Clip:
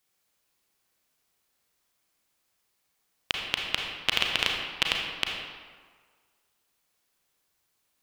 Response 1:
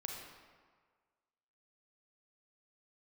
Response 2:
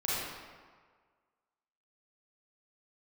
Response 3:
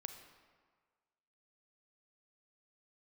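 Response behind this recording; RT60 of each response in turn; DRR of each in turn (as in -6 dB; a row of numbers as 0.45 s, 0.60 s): 1; 1.6 s, 1.6 s, 1.6 s; 0.0 dB, -9.0 dB, 6.5 dB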